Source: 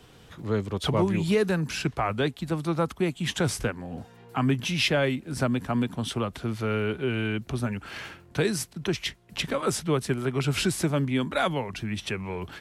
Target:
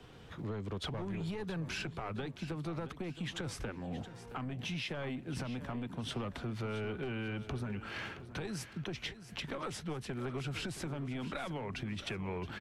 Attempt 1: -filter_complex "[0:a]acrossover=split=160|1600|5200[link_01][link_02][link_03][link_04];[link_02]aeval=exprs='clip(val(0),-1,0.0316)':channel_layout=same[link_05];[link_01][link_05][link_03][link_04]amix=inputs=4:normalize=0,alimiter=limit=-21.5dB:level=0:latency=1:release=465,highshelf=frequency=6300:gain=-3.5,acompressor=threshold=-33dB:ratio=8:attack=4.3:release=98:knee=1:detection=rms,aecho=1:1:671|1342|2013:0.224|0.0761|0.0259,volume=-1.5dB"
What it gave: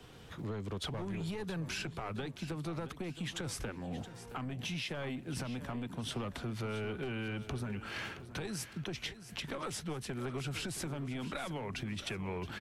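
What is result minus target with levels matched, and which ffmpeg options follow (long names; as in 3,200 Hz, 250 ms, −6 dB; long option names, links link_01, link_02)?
8,000 Hz band +4.5 dB
-filter_complex "[0:a]acrossover=split=160|1600|5200[link_01][link_02][link_03][link_04];[link_02]aeval=exprs='clip(val(0),-1,0.0316)':channel_layout=same[link_05];[link_01][link_05][link_03][link_04]amix=inputs=4:normalize=0,alimiter=limit=-21.5dB:level=0:latency=1:release=465,highshelf=frequency=6300:gain=-13.5,acompressor=threshold=-33dB:ratio=8:attack=4.3:release=98:knee=1:detection=rms,aecho=1:1:671|1342|2013:0.224|0.0761|0.0259,volume=-1.5dB"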